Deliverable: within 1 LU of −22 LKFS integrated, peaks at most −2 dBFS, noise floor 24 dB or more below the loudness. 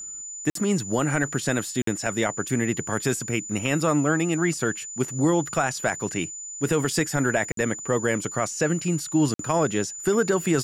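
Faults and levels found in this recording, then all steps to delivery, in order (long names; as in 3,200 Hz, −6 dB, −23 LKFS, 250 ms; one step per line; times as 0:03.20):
number of dropouts 4; longest dropout 53 ms; interfering tone 7,000 Hz; level of the tone −34 dBFS; integrated loudness −25.0 LKFS; sample peak −10.0 dBFS; target loudness −22.0 LKFS
→ repair the gap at 0:00.50/0:01.82/0:07.52/0:09.34, 53 ms
notch filter 7,000 Hz, Q 30
level +3 dB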